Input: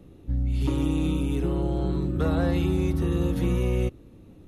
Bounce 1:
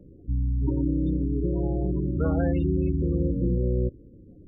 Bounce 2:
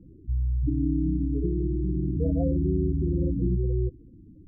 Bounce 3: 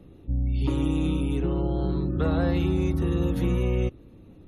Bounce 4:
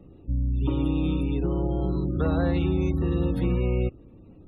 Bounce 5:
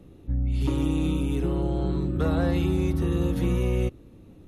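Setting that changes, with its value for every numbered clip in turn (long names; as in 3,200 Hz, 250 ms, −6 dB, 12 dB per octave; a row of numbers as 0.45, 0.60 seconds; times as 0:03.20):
gate on every frequency bin, under each frame's peak: −20, −10, −45, −35, −60 decibels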